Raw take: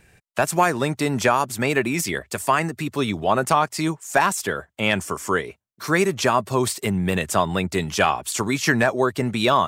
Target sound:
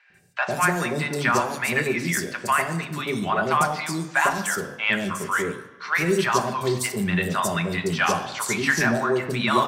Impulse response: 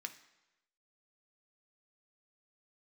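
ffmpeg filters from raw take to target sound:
-filter_complex "[1:a]atrim=start_sample=2205,asetrate=35721,aresample=44100[a];[0:a][a]afir=irnorm=-1:irlink=0,acontrast=49,acrossover=split=730|4400[b][c][d];[b]adelay=100[e];[d]adelay=140[f];[e][c][f]amix=inputs=3:normalize=0,volume=-3.5dB"

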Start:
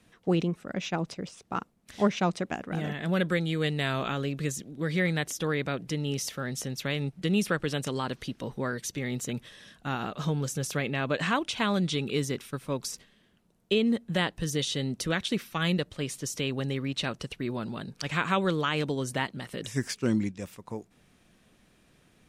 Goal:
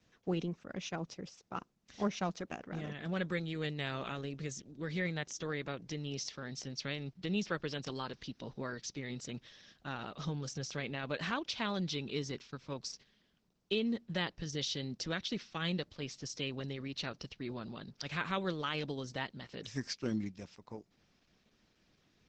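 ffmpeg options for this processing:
-af "asetnsamples=n=441:p=0,asendcmd='6.01 highshelf g -13.5',highshelf=f=7.4k:t=q:w=3:g=-7.5,volume=-8.5dB" -ar 48000 -c:a libopus -b:a 12k

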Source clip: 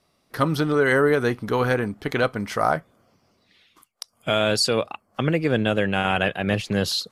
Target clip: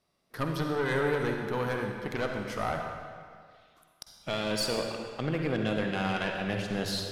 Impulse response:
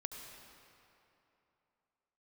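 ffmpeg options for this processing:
-filter_complex "[0:a]aeval=exprs='(tanh(5.62*val(0)+0.55)-tanh(0.55))/5.62':c=same[a];[1:a]atrim=start_sample=2205,asetrate=66150,aresample=44100[b];[a][b]afir=irnorm=-1:irlink=0"

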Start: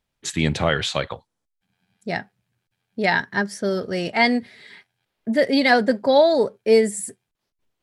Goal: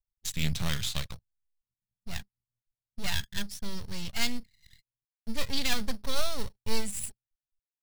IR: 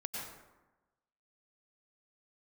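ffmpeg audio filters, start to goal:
-filter_complex "[0:a]anlmdn=0.398,asplit=2[a][b];[b]acrusher=samples=9:mix=1:aa=0.000001,volume=-8dB[c];[a][c]amix=inputs=2:normalize=0,aeval=exprs='max(val(0),0)':c=same,firequalizer=gain_entry='entry(120,0);entry(330,-20);entry(3600,0)':delay=0.05:min_phase=1,volume=-1.5dB"

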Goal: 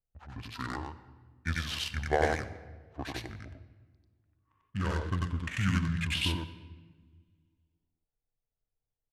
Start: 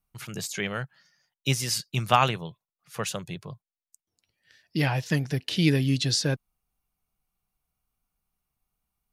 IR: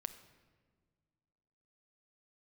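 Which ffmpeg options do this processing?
-filter_complex "[0:a]adynamicsmooth=sensitivity=7:basefreq=1.4k,asetrate=26990,aresample=44100,atempo=1.63392,asplit=2[a][b];[1:a]atrim=start_sample=2205,highshelf=f=2.3k:g=9,adelay=93[c];[b][c]afir=irnorm=-1:irlink=0,volume=-0.5dB[d];[a][d]amix=inputs=2:normalize=0,volume=-7.5dB"

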